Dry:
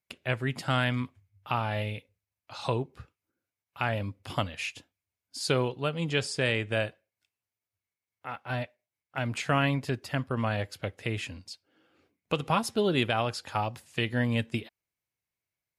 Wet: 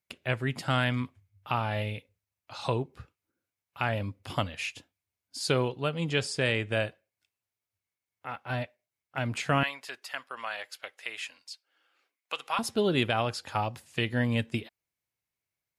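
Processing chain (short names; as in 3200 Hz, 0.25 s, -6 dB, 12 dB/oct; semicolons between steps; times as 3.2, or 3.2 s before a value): 9.63–12.59 HPF 1000 Hz 12 dB/oct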